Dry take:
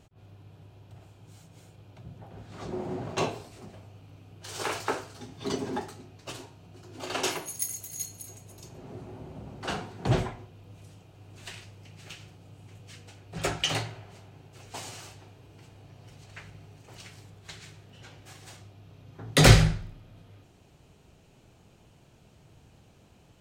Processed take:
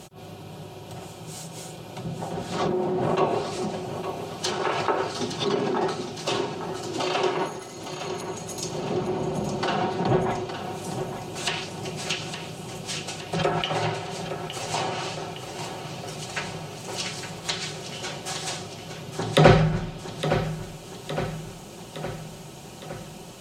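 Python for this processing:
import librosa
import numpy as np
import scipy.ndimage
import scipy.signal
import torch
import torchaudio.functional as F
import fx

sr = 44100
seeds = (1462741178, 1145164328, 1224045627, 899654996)

p1 = fx.highpass(x, sr, hz=280.0, slope=6)
p2 = fx.peak_eq(p1, sr, hz=1900.0, db=-6.0, octaves=1.0)
p3 = p2 + 0.51 * np.pad(p2, (int(5.4 * sr / 1000.0), 0))[:len(p2)]
p4 = fx.over_compress(p3, sr, threshold_db=-41.0, ratio=-0.5)
p5 = p3 + F.gain(torch.from_numpy(p4), 2.5).numpy()
p6 = fx.high_shelf(p5, sr, hz=8500.0, db=7.0)
p7 = fx.env_lowpass_down(p6, sr, base_hz=1800.0, full_db=-25.0)
p8 = p7 + fx.echo_feedback(p7, sr, ms=863, feedback_pct=58, wet_db=-9.5, dry=0)
y = F.gain(torch.from_numpy(p8), 6.5).numpy()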